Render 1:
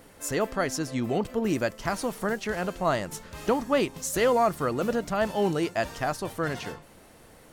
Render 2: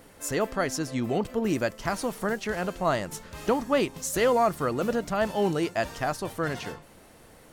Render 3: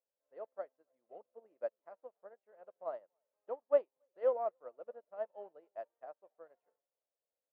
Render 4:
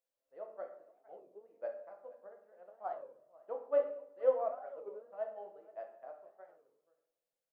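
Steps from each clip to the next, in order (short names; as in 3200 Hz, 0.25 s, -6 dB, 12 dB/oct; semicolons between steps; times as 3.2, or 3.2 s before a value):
nothing audible
ladder band-pass 630 Hz, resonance 60%; echo 0.279 s -20 dB; upward expander 2.5:1, over -48 dBFS; gain +1.5 dB
echo 0.474 s -21 dB; shoebox room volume 140 m³, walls mixed, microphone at 0.68 m; record warp 33 1/3 rpm, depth 250 cents; gain -2 dB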